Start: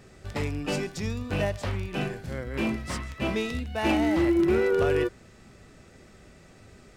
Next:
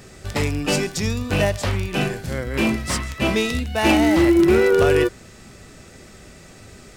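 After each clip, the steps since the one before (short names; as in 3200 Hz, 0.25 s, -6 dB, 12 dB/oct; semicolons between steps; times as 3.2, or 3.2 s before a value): high shelf 4200 Hz +8 dB; gain +7.5 dB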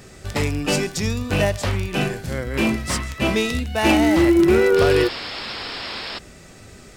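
painted sound noise, 4.76–6.19, 210–5500 Hz -31 dBFS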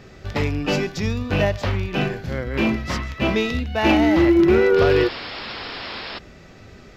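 running mean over 5 samples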